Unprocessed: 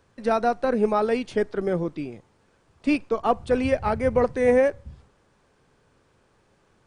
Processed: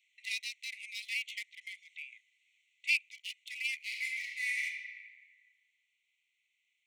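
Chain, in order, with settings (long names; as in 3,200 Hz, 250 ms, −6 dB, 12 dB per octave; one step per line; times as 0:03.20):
adaptive Wiener filter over 9 samples
Chebyshev high-pass filter 2,000 Hz, order 10
speech leveller within 3 dB 0.5 s
0:00.79–0:01.96: one half of a high-frequency compander encoder only
0:03.76–0:04.64: thrown reverb, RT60 1.8 s, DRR −1.5 dB
level +4.5 dB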